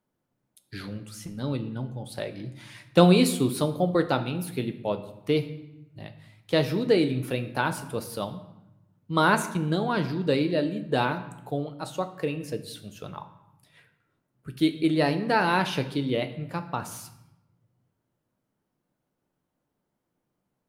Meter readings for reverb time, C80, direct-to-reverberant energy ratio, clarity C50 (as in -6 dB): 0.90 s, 14.5 dB, 7.5 dB, 12.0 dB